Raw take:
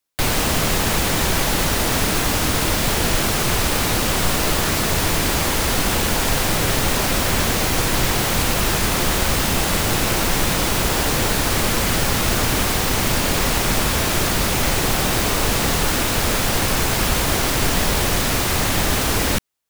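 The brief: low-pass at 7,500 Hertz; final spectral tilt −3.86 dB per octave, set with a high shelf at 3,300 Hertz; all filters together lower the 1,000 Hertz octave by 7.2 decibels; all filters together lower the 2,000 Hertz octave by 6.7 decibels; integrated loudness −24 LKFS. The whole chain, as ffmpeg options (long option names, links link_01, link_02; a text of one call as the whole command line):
ffmpeg -i in.wav -af "lowpass=7500,equalizer=frequency=1000:width_type=o:gain=-8,equalizer=frequency=2000:width_type=o:gain=-8,highshelf=frequency=3300:gain=5,volume=-4dB" out.wav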